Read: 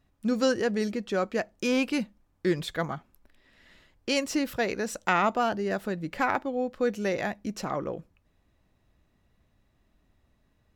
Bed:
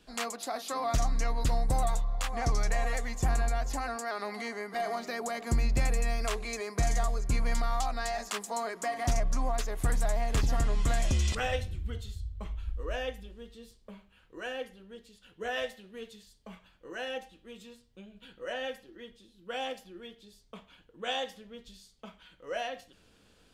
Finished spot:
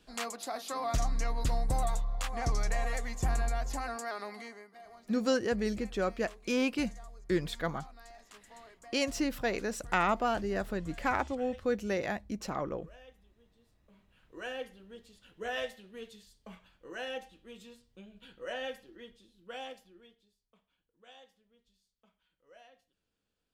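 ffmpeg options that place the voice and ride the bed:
-filter_complex "[0:a]adelay=4850,volume=-4dB[a];[1:a]volume=15.5dB,afade=t=out:st=4.07:d=0.66:silence=0.133352,afade=t=in:st=13.87:d=0.48:silence=0.125893,afade=t=out:st=18.91:d=1.46:silence=0.0944061[b];[a][b]amix=inputs=2:normalize=0"

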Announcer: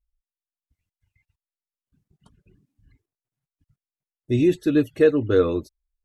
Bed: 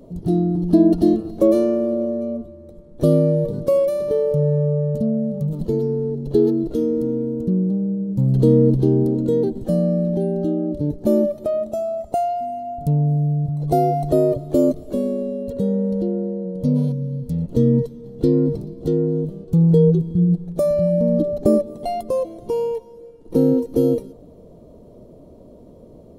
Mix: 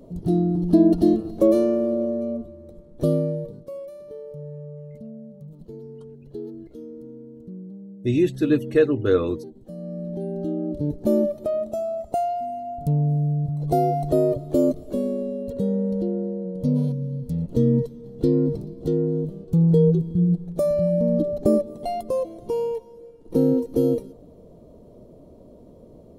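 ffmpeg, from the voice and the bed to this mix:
-filter_complex "[0:a]adelay=3750,volume=-1dB[a];[1:a]volume=13.5dB,afade=t=out:st=2.76:d=0.88:silence=0.149624,afade=t=in:st=9.75:d=1.1:silence=0.16788[b];[a][b]amix=inputs=2:normalize=0"

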